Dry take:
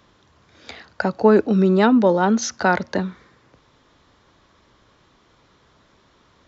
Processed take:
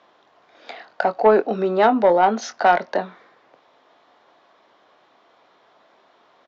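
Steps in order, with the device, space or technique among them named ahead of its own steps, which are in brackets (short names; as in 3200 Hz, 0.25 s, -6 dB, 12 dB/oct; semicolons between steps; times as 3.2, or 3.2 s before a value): intercom (BPF 370–3900 Hz; bell 710 Hz +10 dB 0.52 oct; soft clip -6 dBFS, distortion -19 dB; doubler 23 ms -11 dB)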